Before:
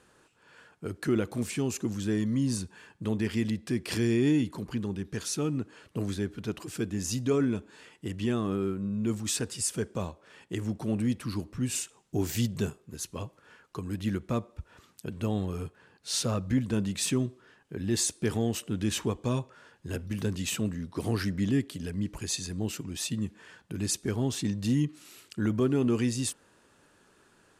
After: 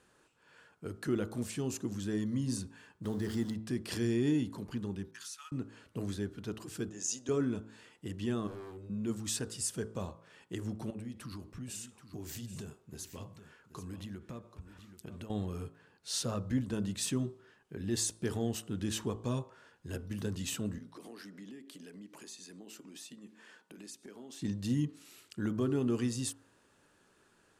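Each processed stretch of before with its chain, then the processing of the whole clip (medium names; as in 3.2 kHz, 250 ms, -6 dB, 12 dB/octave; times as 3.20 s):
3.04–3.54 s: jump at every zero crossing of -40.5 dBFS + peaking EQ 2.5 kHz -12.5 dB 0.39 oct
5.11–5.52 s: steep high-pass 1.1 kHz + gate -49 dBFS, range -24 dB + compression 3:1, threshold -38 dBFS
6.89–7.29 s: cabinet simulation 450–9300 Hz, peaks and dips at 1.2 kHz -4 dB, 2.1 kHz -5 dB, 4.2 kHz -5 dB, 6.6 kHz +9 dB + tape noise reduction on one side only decoder only
8.47–8.90 s: static phaser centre 510 Hz, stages 4 + hard clipper -38 dBFS
10.90–15.30 s: compression, threshold -34 dBFS + delay 780 ms -12 dB
20.78–24.42 s: high-pass 220 Hz 24 dB/octave + compression 4:1, threshold -42 dBFS
whole clip: de-hum 54.95 Hz, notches 27; dynamic bell 2.3 kHz, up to -6 dB, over -58 dBFS, Q 4.2; trim -5 dB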